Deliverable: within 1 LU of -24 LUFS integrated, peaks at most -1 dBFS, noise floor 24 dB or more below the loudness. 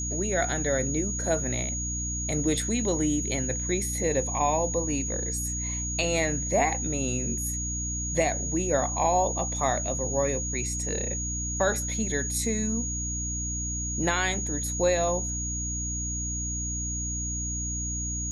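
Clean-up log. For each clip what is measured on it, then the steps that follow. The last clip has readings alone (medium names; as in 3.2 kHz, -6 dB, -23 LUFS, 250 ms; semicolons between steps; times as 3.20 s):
hum 60 Hz; highest harmonic 300 Hz; hum level -31 dBFS; steady tone 6.7 kHz; tone level -31 dBFS; loudness -27.5 LUFS; peak level -11.0 dBFS; loudness target -24.0 LUFS
-> de-hum 60 Hz, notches 5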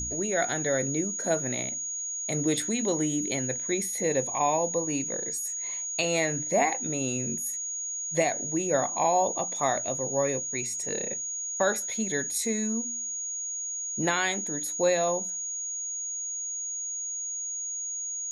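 hum not found; steady tone 6.7 kHz; tone level -31 dBFS
-> band-stop 6.7 kHz, Q 30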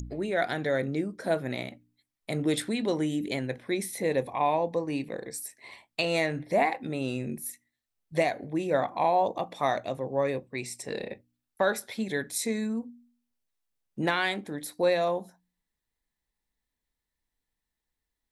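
steady tone not found; loudness -29.5 LUFS; peak level -11.5 dBFS; loudness target -24.0 LUFS
-> trim +5.5 dB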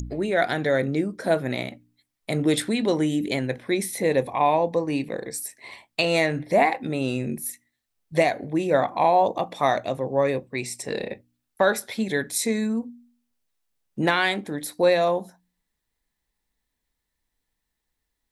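loudness -24.0 LUFS; peak level -6.0 dBFS; noise floor -81 dBFS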